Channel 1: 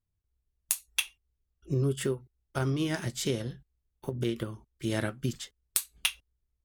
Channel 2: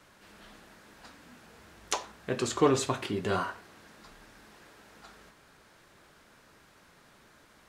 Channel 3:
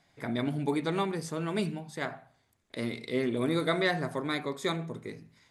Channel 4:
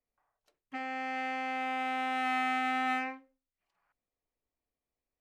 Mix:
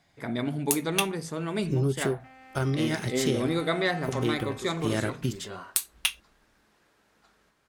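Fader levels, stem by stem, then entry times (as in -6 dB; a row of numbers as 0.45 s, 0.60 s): +2.0 dB, -11.0 dB, +1.0 dB, -14.5 dB; 0.00 s, 2.20 s, 0.00 s, 1.50 s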